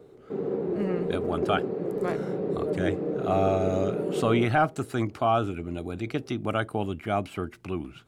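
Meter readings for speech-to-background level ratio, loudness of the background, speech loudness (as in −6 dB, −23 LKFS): 1.5 dB, −30.5 LKFS, −29.0 LKFS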